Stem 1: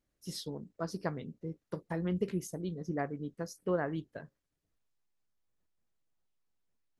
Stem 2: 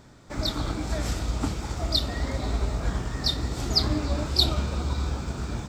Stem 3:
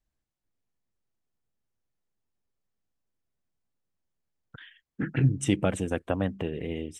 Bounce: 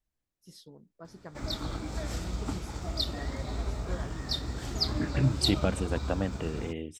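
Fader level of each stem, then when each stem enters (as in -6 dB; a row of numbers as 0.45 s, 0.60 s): -11.0 dB, -6.5 dB, -3.0 dB; 0.20 s, 1.05 s, 0.00 s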